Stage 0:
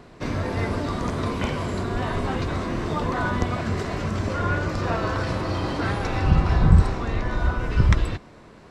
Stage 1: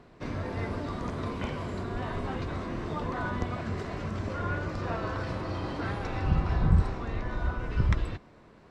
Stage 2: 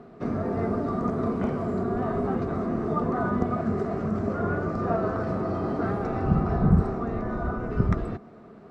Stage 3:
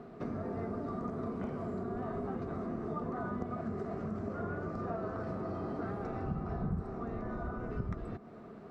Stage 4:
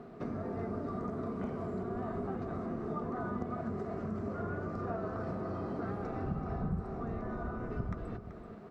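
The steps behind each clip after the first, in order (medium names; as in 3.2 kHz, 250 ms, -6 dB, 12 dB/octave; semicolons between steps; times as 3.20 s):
treble shelf 5.9 kHz -8.5 dB; trim -7.5 dB
small resonant body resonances 220/400/660/1200 Hz, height 16 dB, ringing for 25 ms; dynamic bell 3.2 kHz, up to -8 dB, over -49 dBFS, Q 1.2; trim -5 dB
compression 2.5:1, threshold -37 dBFS, peak gain reduction 15.5 dB; trim -2 dB
delay 382 ms -10.5 dB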